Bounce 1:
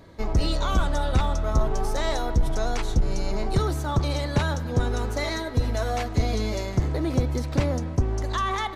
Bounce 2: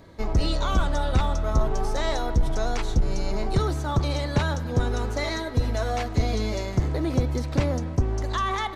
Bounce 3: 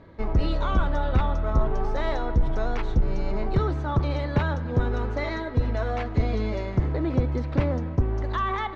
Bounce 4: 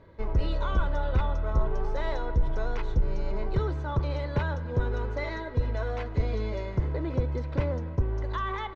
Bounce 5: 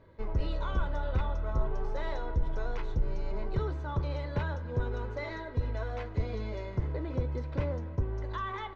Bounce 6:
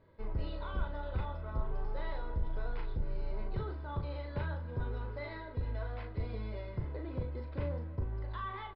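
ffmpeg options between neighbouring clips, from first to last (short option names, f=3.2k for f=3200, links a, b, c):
-filter_complex "[0:a]acrossover=split=8300[a][b];[b]acompressor=threshold=-55dB:ratio=4:attack=1:release=60[c];[a][c]amix=inputs=2:normalize=0"
-af "lowpass=2.5k,equalizer=f=720:w=6.4:g=-3"
-af "aecho=1:1:2:0.36,volume=-5dB"
-af "flanger=delay=7.9:depth=3.8:regen=-69:speed=0.61:shape=sinusoidal"
-filter_complex "[0:a]asplit=2[a][b];[b]adelay=38,volume=-5.5dB[c];[a][c]amix=inputs=2:normalize=0,volume=-6dB" -ar 12000 -c:a libmp3lame -b:a 64k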